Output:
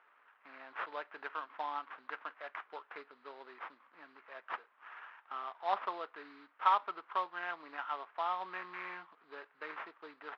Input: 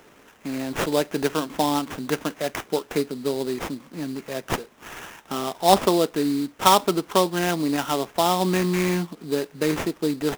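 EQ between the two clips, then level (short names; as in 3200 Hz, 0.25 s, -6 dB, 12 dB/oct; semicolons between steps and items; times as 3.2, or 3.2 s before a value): ladder band-pass 1500 Hz, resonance 35%; air absorption 300 m; +1.5 dB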